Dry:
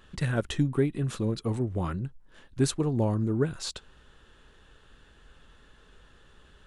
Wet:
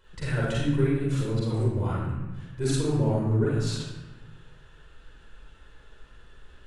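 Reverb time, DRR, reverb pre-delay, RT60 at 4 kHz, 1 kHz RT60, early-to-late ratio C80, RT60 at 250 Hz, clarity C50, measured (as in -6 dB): 1.1 s, -7.5 dB, 40 ms, 0.85 s, 1.1 s, 1.0 dB, 1.4 s, -3.0 dB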